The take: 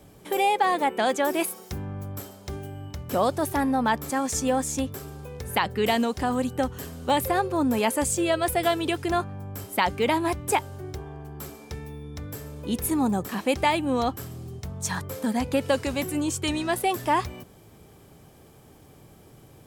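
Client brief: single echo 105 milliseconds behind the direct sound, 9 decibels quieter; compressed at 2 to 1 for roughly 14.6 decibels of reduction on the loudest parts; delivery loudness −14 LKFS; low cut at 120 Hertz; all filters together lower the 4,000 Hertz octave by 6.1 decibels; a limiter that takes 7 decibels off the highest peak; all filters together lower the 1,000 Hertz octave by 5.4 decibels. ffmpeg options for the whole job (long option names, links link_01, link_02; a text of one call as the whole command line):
ffmpeg -i in.wav -af "highpass=120,equalizer=frequency=1000:width_type=o:gain=-7,equalizer=frequency=4000:width_type=o:gain=-8,acompressor=threshold=-49dB:ratio=2,alimiter=level_in=8dB:limit=-24dB:level=0:latency=1,volume=-8dB,aecho=1:1:105:0.355,volume=28.5dB" out.wav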